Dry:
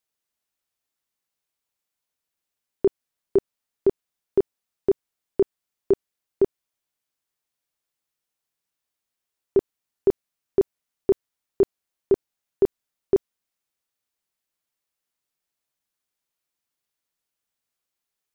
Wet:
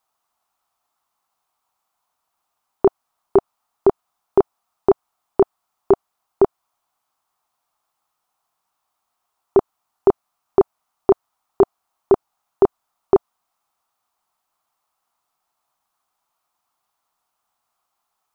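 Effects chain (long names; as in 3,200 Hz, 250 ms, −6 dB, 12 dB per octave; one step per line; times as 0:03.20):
flat-topped bell 950 Hz +15 dB 1.2 octaves
level +5 dB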